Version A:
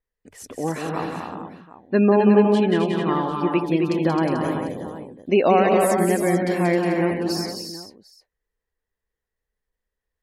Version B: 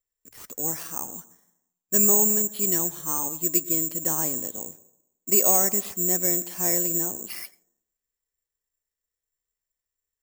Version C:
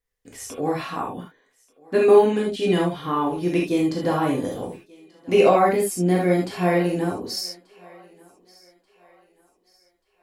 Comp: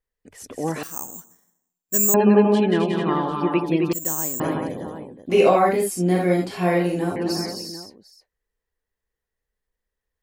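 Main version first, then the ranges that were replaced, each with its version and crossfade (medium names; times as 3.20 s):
A
0.83–2.14 s: from B
3.93–4.40 s: from B
5.30–7.16 s: from C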